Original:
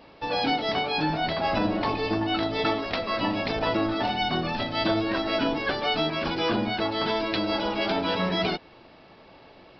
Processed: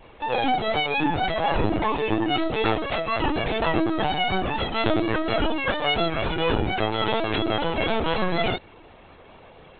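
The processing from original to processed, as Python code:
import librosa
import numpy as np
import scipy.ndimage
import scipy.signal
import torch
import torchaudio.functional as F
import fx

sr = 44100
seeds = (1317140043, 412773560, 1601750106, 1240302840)

y = fx.lpc_vocoder(x, sr, seeds[0], excitation='pitch_kept', order=16)
y = fx.vibrato(y, sr, rate_hz=4.2, depth_cents=32.0)
y = y * 10.0 ** (3.0 / 20.0)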